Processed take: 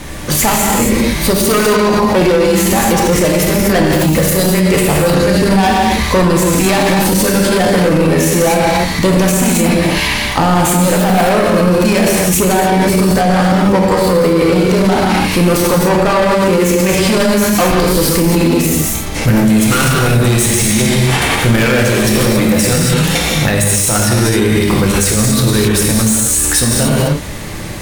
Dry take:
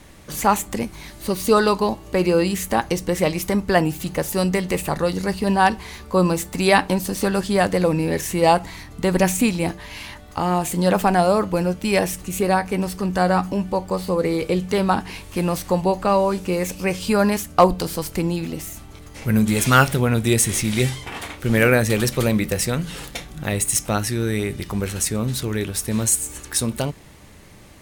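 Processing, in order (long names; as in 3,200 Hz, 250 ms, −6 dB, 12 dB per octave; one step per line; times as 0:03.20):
hard clipping −19.5 dBFS, distortion −6 dB
reverb whose tail is shaped and stops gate 300 ms flat, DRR −2.5 dB
boost into a limiter +19.5 dB
level −2.5 dB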